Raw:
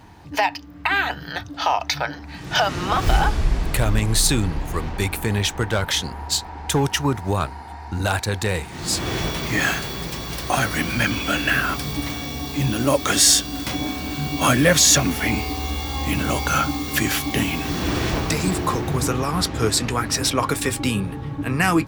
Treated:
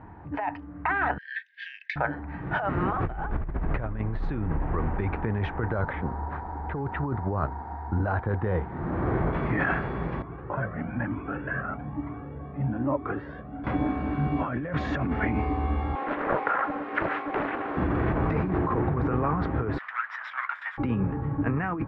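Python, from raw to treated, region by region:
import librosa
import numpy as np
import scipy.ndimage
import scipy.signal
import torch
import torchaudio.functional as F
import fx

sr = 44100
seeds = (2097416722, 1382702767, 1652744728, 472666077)

y = fx.chain(x, sr, fx.cheby1_highpass(hz=1600.0, order=10),
    fx.tilt_eq(slope=3.5), at=(1.18, 1.96))
y = fx.chain(y, sr, fx.lowpass(hz=1900.0, slope=12),
    fx.resample_bad(factor=8, down='none', up='hold'), at=(5.68, 9.33))
y = fx.chain(y, sr, fx.highpass(hz=100.0, slope=12),
    fx.spacing_loss(db_at_10k=42),
    fx.comb_cascade(direction='rising', hz=1.1), at=(10.22, 13.64))
y = fx.chain(y, sr, fx.highpass(hz=340.0, slope=24),
    fx.peak_eq(hz=5700.0, db=-3.5, octaves=0.84),
    fx.doppler_dist(depth_ms=0.97), at=(15.95, 17.77))
y = fx.chain(y, sr, fx.lower_of_two(delay_ms=0.57),
    fx.cheby2_highpass(hz=430.0, order=4, stop_db=50),
    fx.high_shelf(hz=5600.0, db=7.5), at=(19.78, 20.78))
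y = scipy.signal.sosfilt(scipy.signal.butter(4, 1700.0, 'lowpass', fs=sr, output='sos'), y)
y = fx.over_compress(y, sr, threshold_db=-24.0, ratio=-1.0)
y = F.gain(torch.from_numpy(y), -2.0).numpy()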